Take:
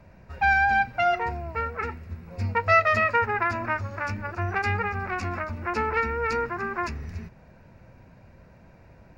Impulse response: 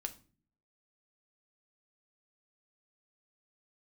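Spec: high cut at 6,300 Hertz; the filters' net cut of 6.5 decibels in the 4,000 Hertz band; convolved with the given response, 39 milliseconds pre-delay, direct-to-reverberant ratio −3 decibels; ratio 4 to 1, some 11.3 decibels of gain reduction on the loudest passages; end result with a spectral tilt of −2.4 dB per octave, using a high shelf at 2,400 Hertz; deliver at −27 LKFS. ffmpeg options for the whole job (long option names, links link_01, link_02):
-filter_complex "[0:a]lowpass=6300,highshelf=frequency=2400:gain=-5,equalizer=frequency=4000:width_type=o:gain=-4,acompressor=threshold=-30dB:ratio=4,asplit=2[link_01][link_02];[1:a]atrim=start_sample=2205,adelay=39[link_03];[link_02][link_03]afir=irnorm=-1:irlink=0,volume=4.5dB[link_04];[link_01][link_04]amix=inputs=2:normalize=0,volume=2dB"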